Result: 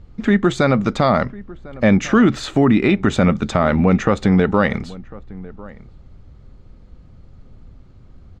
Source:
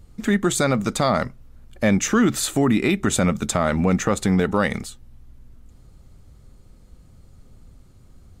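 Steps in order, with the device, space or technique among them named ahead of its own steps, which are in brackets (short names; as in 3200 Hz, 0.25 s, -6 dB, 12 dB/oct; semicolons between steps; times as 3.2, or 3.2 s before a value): shout across a valley (air absorption 190 m; outdoor echo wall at 180 m, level -20 dB); gain +5 dB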